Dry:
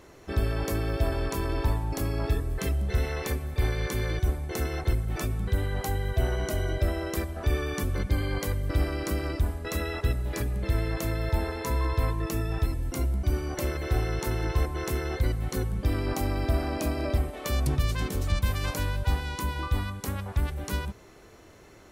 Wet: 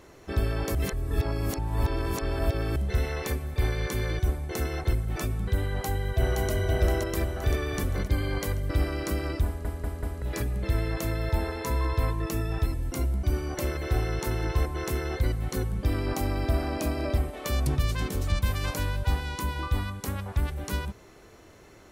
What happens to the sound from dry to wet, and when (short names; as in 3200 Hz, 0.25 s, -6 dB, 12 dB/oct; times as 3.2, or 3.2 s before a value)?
0.75–2.76 reverse
5.68–6.51 echo throw 0.52 s, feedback 55%, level -2.5 dB
9.46 stutter in place 0.19 s, 4 plays